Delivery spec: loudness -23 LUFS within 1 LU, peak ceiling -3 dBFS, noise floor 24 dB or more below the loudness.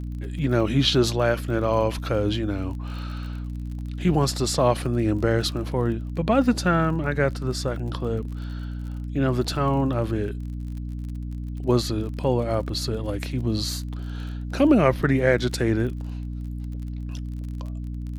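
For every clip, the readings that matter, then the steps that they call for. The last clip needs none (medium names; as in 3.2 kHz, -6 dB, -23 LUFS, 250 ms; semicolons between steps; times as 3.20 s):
tick rate 33 per s; hum 60 Hz; highest harmonic 300 Hz; hum level -29 dBFS; loudness -25.0 LUFS; peak level -4.5 dBFS; loudness target -23.0 LUFS
-> de-click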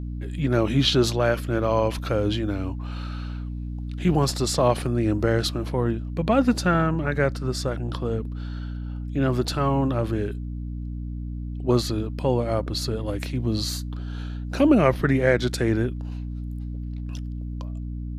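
tick rate 0.11 per s; hum 60 Hz; highest harmonic 300 Hz; hum level -29 dBFS
-> de-hum 60 Hz, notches 5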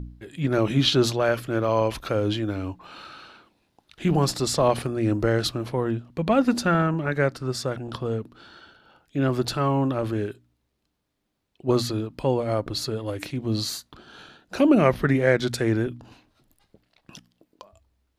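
hum not found; loudness -24.5 LUFS; peak level -5.0 dBFS; loudness target -23.0 LUFS
-> trim +1.5 dB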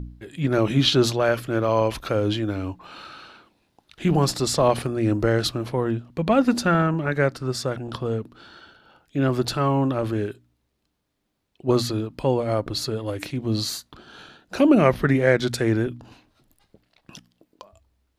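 loudness -23.0 LUFS; peak level -3.5 dBFS; noise floor -73 dBFS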